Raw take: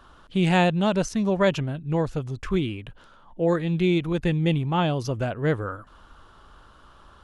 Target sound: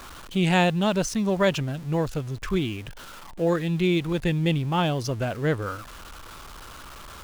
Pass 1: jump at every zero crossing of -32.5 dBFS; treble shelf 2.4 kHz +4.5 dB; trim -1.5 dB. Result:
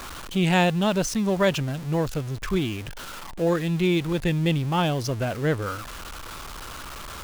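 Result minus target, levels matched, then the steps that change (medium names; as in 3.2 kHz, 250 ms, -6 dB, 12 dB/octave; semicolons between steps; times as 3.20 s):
jump at every zero crossing: distortion +5 dB
change: jump at every zero crossing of -38.5 dBFS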